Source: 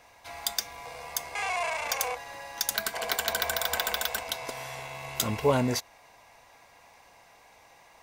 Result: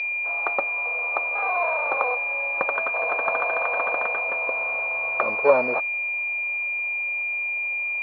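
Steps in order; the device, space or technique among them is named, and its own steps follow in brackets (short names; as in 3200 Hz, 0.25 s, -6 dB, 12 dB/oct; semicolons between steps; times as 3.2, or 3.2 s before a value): toy sound module (decimation joined by straight lines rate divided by 8×; pulse-width modulation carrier 2400 Hz; speaker cabinet 550–4800 Hz, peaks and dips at 560 Hz +8 dB, 1200 Hz +7 dB, 4300 Hz +4 dB); gain +7 dB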